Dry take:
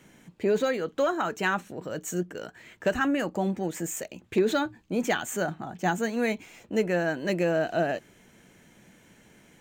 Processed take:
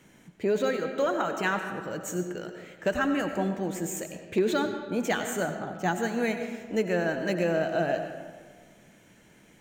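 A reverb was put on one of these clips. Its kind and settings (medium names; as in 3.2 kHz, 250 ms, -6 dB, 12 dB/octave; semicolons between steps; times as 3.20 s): algorithmic reverb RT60 1.6 s, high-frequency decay 0.6×, pre-delay 55 ms, DRR 6.5 dB; trim -1.5 dB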